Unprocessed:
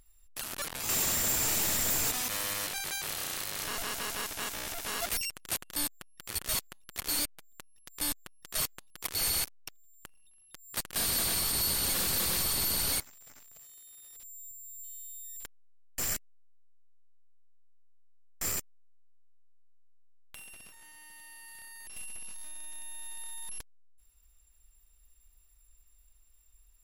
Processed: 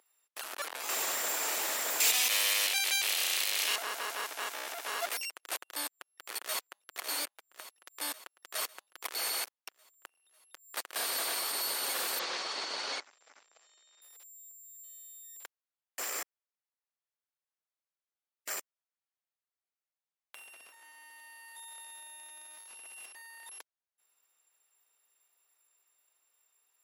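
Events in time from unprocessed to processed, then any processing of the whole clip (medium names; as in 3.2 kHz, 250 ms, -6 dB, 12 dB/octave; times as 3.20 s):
2.00–3.76 s: resonant high shelf 1.9 kHz +9 dB, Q 1.5
6.41–6.83 s: echo throw 550 ms, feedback 65%, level -11 dB
12.19–14.02 s: steep low-pass 6.6 kHz
16.10–18.54 s: reverse
21.56–23.46 s: reverse
whole clip: Bessel high-pass 590 Hz, order 4; treble shelf 2.8 kHz -10.5 dB; trim +4.5 dB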